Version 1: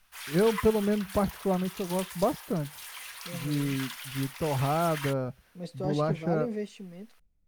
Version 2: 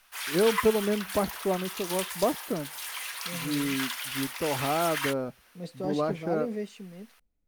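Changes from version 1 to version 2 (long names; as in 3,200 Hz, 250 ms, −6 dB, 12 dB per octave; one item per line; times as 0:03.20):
first voice: add low shelf with overshoot 200 Hz −6.5 dB, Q 1.5
background +6.0 dB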